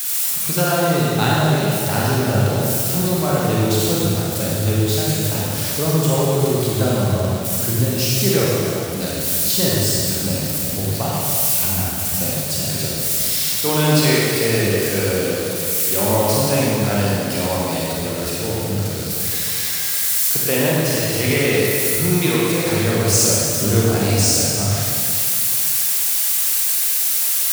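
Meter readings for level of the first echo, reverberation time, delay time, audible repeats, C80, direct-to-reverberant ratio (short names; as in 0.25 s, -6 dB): none, 2.5 s, none, none, -2.0 dB, -6.0 dB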